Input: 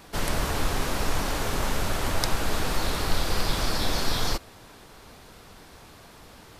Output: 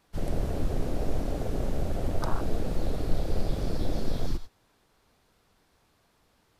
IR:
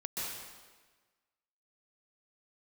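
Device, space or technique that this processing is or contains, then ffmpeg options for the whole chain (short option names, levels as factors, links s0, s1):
keyed gated reverb: -filter_complex "[0:a]asplit=3[s0][s1][s2];[1:a]atrim=start_sample=2205[s3];[s1][s3]afir=irnorm=-1:irlink=0[s4];[s2]apad=whole_len=290622[s5];[s4][s5]sidechaingate=range=0.0224:threshold=0.0178:ratio=16:detection=peak,volume=0.299[s6];[s0][s6]amix=inputs=2:normalize=0,afwtdn=0.0708,volume=0.794"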